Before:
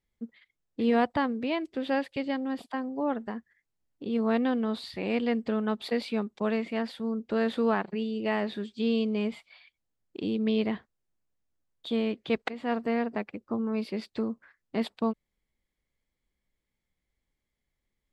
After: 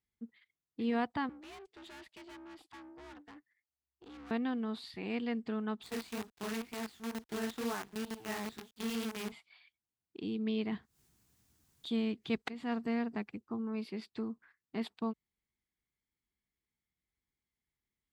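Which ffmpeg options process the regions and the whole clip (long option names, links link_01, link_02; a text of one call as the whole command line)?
ffmpeg -i in.wav -filter_complex "[0:a]asettb=1/sr,asplit=3[link_01][link_02][link_03];[link_01]atrim=end=1.294[link_04];[link_02]atrim=start=1.29:end=4.31,asetpts=PTS-STARTPTS,afade=type=in:duration=0.004:curve=qsin,afade=type=out:start_time=3.016:duration=0.004:curve=qsin,lowshelf=frequency=320:gain=-9,afreqshift=67,aeval=exprs='(tanh(100*val(0)+0.65)-tanh(0.65))/100':channel_layout=same[link_05];[link_03]atrim=start=4.306[link_06];[link_04][link_05]acrossfade=duration=0.004:curve1=hsin:curve2=qsin[link_07];[link_07][link_06]acrossfade=duration=0.004:curve1=qsin:curve2=hsin,asettb=1/sr,asplit=3[link_08][link_09][link_10];[link_08]atrim=end=5.834[link_11];[link_09]atrim=start=5.83:end=9.32,asetpts=PTS-STARTPTS,afade=type=in:duration=0.004:curve=qsin,afade=type=out:start_time=3.486:duration=0.004:curve=qsin,lowshelf=frequency=62:gain=-5,flanger=delay=16:depth=7.2:speed=2.1,acrusher=bits=6:dc=4:mix=0:aa=0.000001[link_12];[link_10]atrim=start=9.316[link_13];[link_11][link_12]acrossfade=duration=0.004:curve1=hsin:curve2=qsin[link_14];[link_14][link_13]acrossfade=duration=0.004:curve1=qsin:curve2=hsin,asettb=1/sr,asplit=3[link_15][link_16][link_17];[link_15]atrim=end=10.724[link_18];[link_16]atrim=start=10.72:end=13.41,asetpts=PTS-STARTPTS,afade=type=in:duration=0.004:curve=qsin,afade=type=out:start_time=2.686:duration=0.004:curve=qsin,acompressor=mode=upward:threshold=-40dB:ratio=2.5:attack=3.2:release=140:knee=2.83:detection=peak,bass=frequency=250:gain=6,treble=frequency=4000:gain=7[link_19];[link_17]atrim=start=13.406[link_20];[link_18][link_19]acrossfade=duration=0.004:curve1=hsin:curve2=qsin[link_21];[link_21][link_20]acrossfade=duration=0.004:curve1=qsin:curve2=hsin,highpass=56,equalizer=frequency=560:width=5.2:gain=-14.5,volume=-7dB" out.wav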